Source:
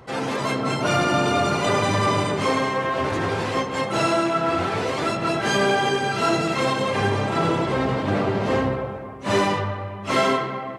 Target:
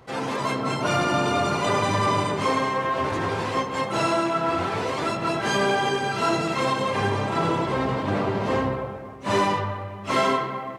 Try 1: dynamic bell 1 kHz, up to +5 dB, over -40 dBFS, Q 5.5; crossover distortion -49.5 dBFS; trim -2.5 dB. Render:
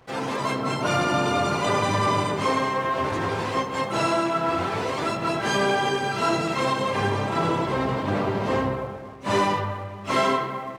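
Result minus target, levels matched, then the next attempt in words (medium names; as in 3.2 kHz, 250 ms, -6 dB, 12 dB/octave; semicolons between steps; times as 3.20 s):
crossover distortion: distortion +8 dB
dynamic bell 1 kHz, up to +5 dB, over -40 dBFS, Q 5.5; crossover distortion -57.5 dBFS; trim -2.5 dB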